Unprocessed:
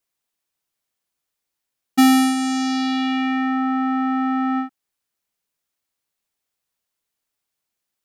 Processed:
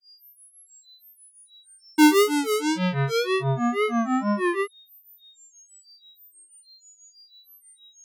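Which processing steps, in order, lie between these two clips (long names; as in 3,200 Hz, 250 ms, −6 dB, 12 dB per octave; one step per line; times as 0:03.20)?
tape wow and flutter 66 cents
steady tone 7,100 Hz −46 dBFS
granular cloud 228 ms, grains 6.2 per second, spray 32 ms, pitch spread up and down by 12 semitones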